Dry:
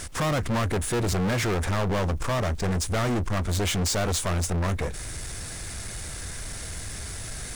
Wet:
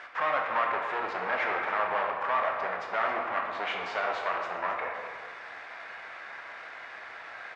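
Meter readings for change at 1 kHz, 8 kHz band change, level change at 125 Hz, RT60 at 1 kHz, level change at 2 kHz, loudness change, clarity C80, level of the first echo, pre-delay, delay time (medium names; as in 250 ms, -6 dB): +4.0 dB, under -30 dB, under -30 dB, 1.6 s, +2.5 dB, -2.5 dB, 4.0 dB, -12.0 dB, 13 ms, 274 ms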